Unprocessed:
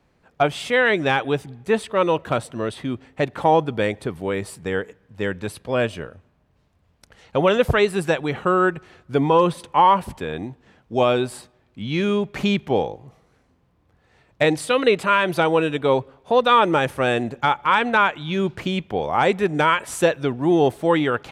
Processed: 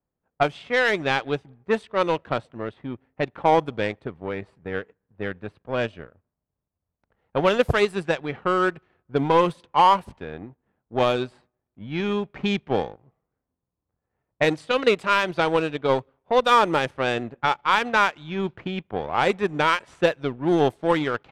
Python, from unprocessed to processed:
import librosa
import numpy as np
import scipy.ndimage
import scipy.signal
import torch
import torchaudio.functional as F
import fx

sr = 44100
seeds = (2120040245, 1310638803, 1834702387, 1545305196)

y = fx.power_curve(x, sr, exponent=1.4)
y = fx.env_lowpass(y, sr, base_hz=1300.0, full_db=-15.5)